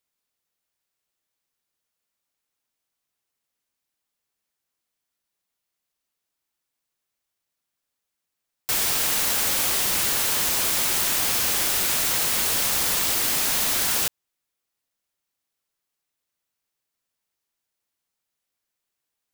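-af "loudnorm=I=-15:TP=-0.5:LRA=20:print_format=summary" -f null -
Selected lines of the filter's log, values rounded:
Input Integrated:    -20.1 LUFS
Input True Peak:      -8.9 dBTP
Input LRA:             9.9 LU
Input Threshold:     -30.2 LUFS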